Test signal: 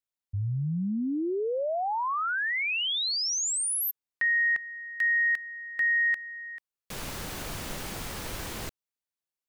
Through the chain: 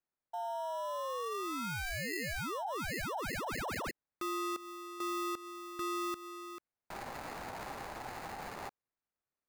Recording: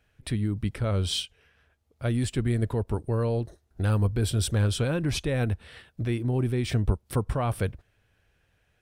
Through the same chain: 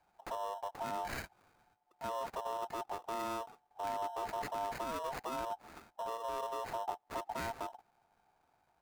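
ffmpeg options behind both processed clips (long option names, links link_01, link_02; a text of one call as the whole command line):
ffmpeg -i in.wav -af "acrusher=samples=19:mix=1:aa=0.000001,acompressor=threshold=-31dB:ratio=2.5:attack=0.19:release=352:knee=1:detection=peak,aeval=exprs='val(0)*sin(2*PI*800*n/s)':channel_layout=same,volume=-3dB" out.wav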